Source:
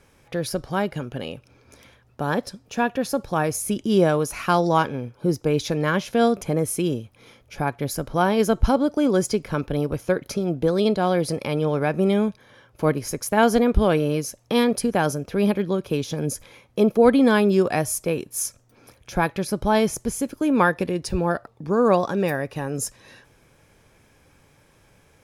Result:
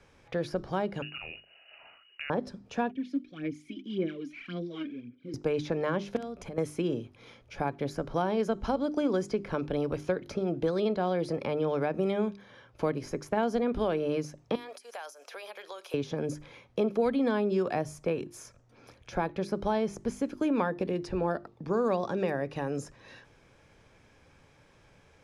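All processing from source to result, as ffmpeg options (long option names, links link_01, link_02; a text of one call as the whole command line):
ffmpeg -i in.wav -filter_complex "[0:a]asettb=1/sr,asplit=3[link_01][link_02][link_03];[link_01]atrim=end=1.024[link_04];[link_02]atrim=start=1.02:end=2.3,asetpts=PTS-STARTPTS,afade=type=in:duration=0.004:curve=qsin,afade=type=out:start_time=1.276:duration=0.004:curve=qsin,lowpass=frequency=2600:width_type=q:width=0.5098,lowpass=frequency=2600:width_type=q:width=0.6013,lowpass=frequency=2600:width_type=q:width=0.9,lowpass=frequency=2600:width_type=q:width=2.563,afreqshift=-3000,asplit=2[link_05][link_06];[link_06]adelay=39,volume=-12.5dB[link_07];[link_05][link_07]amix=inputs=2:normalize=0,atrim=end_sample=56448[link_08];[link_03]atrim=start=2.296[link_09];[link_04][link_08]acrossfade=duration=0.004:curve1=hsin:curve2=qsin[link_10];[link_10][link_09]acrossfade=duration=0.004:curve1=qsin:curve2=hsin,asettb=1/sr,asplit=3[link_11][link_12][link_13];[link_11]atrim=end=2.914[link_14];[link_12]atrim=start=2.91:end=5.34,asetpts=PTS-STARTPTS,afade=type=in:duration=0.004:curve=qsin,afade=type=out:start_time=2.426:duration=0.004:curve=qsin,asplit=3[link_15][link_16][link_17];[link_15]bandpass=frequency=270:width_type=q:width=8,volume=0dB[link_18];[link_16]bandpass=frequency=2290:width_type=q:width=8,volume=-6dB[link_19];[link_17]bandpass=frequency=3010:width_type=q:width=8,volume=-9dB[link_20];[link_18][link_19][link_20]amix=inputs=3:normalize=0,aphaser=in_gain=1:out_gain=1:delay=3.3:decay=0.69:speed=1.8:type=sinusoidal[link_21];[link_13]atrim=start=5.336[link_22];[link_14][link_21]acrossfade=duration=0.004:curve1=hsin:curve2=qsin[link_23];[link_23][link_22]acrossfade=duration=0.004:curve1=qsin:curve2=hsin,asettb=1/sr,asplit=3[link_24][link_25][link_26];[link_24]atrim=end=6.164[link_27];[link_25]atrim=start=6.16:end=6.58,asetpts=PTS-STARTPTS,afade=type=in:duration=0.004:curve=qsin,afade=type=out:start_time=0.416:duration=0.004:curve=qsin,acompressor=threshold=-33dB:ratio=5:attack=3.2:release=140:knee=1:detection=peak,aeval=exprs='val(0)+0.00141*(sin(2*PI*60*n/s)+sin(2*PI*2*60*n/s)/2+sin(2*PI*3*60*n/s)/3+sin(2*PI*4*60*n/s)/4+sin(2*PI*5*60*n/s)/5)':channel_layout=same,aeval=exprs='(mod(16.8*val(0)+1,2)-1)/16.8':channel_layout=same[link_28];[link_26]atrim=start=6.576[link_29];[link_27][link_28]acrossfade=duration=0.004:curve1=hsin:curve2=qsin[link_30];[link_30][link_29]acrossfade=duration=0.004:curve1=qsin:curve2=hsin,asettb=1/sr,asplit=3[link_31][link_32][link_33];[link_31]atrim=end=14.554[link_34];[link_32]atrim=start=14.55:end=15.94,asetpts=PTS-STARTPTS,afade=type=in:duration=0.004:curve=qsin,afade=type=out:start_time=1.386:duration=0.004:curve=qsin,highpass=frequency=610:width=0.5412,highpass=frequency=610:width=1.3066,aemphasis=mode=production:type=75fm,acompressor=threshold=-35dB:ratio=5:attack=3.2:release=140:knee=1:detection=peak[link_35];[link_33]atrim=start=15.936[link_36];[link_34][link_35]acrossfade=duration=0.004:curve1=hsin:curve2=qsin[link_37];[link_37][link_36]acrossfade=duration=0.004:curve1=qsin:curve2=hsin,lowpass=5900,bandreject=frequency=50:width_type=h:width=6,bandreject=frequency=100:width_type=h:width=6,bandreject=frequency=150:width_type=h:width=6,bandreject=frequency=200:width_type=h:width=6,bandreject=frequency=250:width_type=h:width=6,bandreject=frequency=300:width_type=h:width=6,bandreject=frequency=350:width_type=h:width=6,bandreject=frequency=400:width_type=h:width=6,acrossover=split=220|1000|2200[link_38][link_39][link_40][link_41];[link_38]acompressor=threshold=-37dB:ratio=4[link_42];[link_39]acompressor=threshold=-24dB:ratio=4[link_43];[link_40]acompressor=threshold=-41dB:ratio=4[link_44];[link_41]acompressor=threshold=-47dB:ratio=4[link_45];[link_42][link_43][link_44][link_45]amix=inputs=4:normalize=0,volume=-2.5dB" out.wav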